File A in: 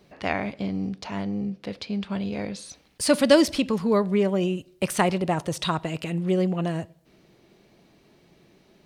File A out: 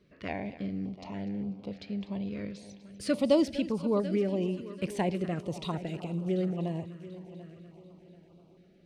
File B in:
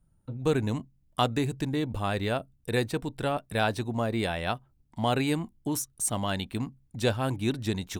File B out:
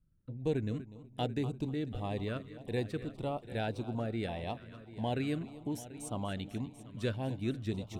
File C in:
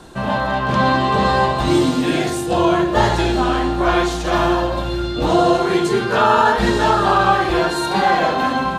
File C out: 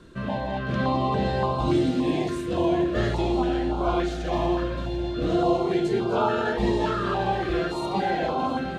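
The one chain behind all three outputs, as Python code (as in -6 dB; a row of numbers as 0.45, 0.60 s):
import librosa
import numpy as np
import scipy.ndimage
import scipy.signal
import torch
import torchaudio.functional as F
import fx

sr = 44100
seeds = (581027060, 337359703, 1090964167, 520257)

p1 = fx.lowpass(x, sr, hz=2300.0, slope=6)
p2 = p1 + fx.echo_heads(p1, sr, ms=246, heads='first and third', feedback_pct=51, wet_db=-16.0, dry=0)
p3 = fx.filter_held_notch(p2, sr, hz=3.5, low_hz=800.0, high_hz=1800.0)
y = p3 * 10.0 ** (-6.0 / 20.0)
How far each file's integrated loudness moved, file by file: -7.0, -7.5, -8.5 LU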